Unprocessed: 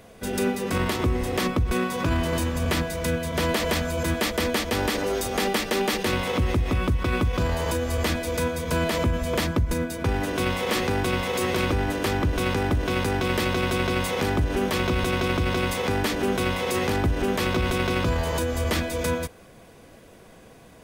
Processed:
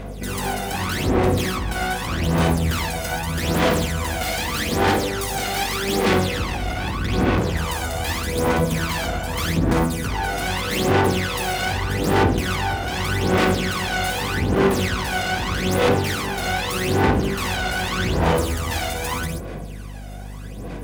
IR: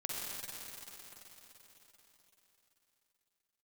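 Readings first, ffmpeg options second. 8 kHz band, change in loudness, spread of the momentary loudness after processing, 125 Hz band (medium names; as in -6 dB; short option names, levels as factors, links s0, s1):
+4.5 dB, +3.5 dB, 7 LU, +3.5 dB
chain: -filter_complex "[0:a]aeval=exprs='0.237*(cos(1*acos(clip(val(0)/0.237,-1,1)))-cos(1*PI/2))+0.119*(cos(5*acos(clip(val(0)/0.237,-1,1)))-cos(5*PI/2))+0.0841*(cos(8*acos(clip(val(0)/0.237,-1,1)))-cos(8*PI/2))':c=same,alimiter=limit=0.224:level=0:latency=1,highpass=79[s0];[1:a]atrim=start_sample=2205,atrim=end_sample=6174[s1];[s0][s1]afir=irnorm=-1:irlink=0,aphaser=in_gain=1:out_gain=1:delay=1.4:decay=0.7:speed=0.82:type=sinusoidal,aeval=exprs='val(0)+0.0355*(sin(2*PI*50*n/s)+sin(2*PI*2*50*n/s)/2+sin(2*PI*3*50*n/s)/3+sin(2*PI*4*50*n/s)/4+sin(2*PI*5*50*n/s)/5)':c=same,volume=0.631"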